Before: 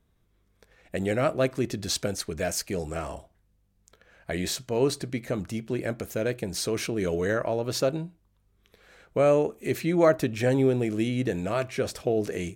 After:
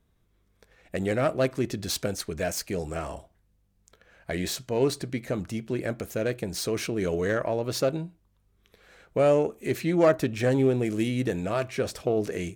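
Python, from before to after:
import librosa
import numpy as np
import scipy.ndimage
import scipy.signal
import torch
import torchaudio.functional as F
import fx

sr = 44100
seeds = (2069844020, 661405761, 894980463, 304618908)

y = fx.self_delay(x, sr, depth_ms=0.082)
y = fx.high_shelf(y, sr, hz=fx.line((10.84, 4800.0), (11.33, 9500.0)), db=7.0, at=(10.84, 11.33), fade=0.02)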